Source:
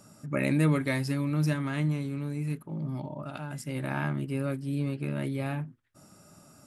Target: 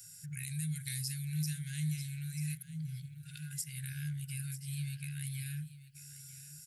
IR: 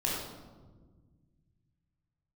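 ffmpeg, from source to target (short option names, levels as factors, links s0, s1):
-filter_complex "[0:a]acrossover=split=480|3900[s0][s1][s2];[s1]acompressor=threshold=0.00447:ratio=6[s3];[s0][s3][s2]amix=inputs=3:normalize=0,crystalizer=i=4.5:c=0,aecho=1:1:939:0.168,alimiter=limit=0.112:level=0:latency=1:release=267,afftfilt=real='re*(1-between(b*sr/4096,170,1400))':imag='im*(1-between(b*sr/4096,170,1400))':win_size=4096:overlap=0.75,volume=0.501"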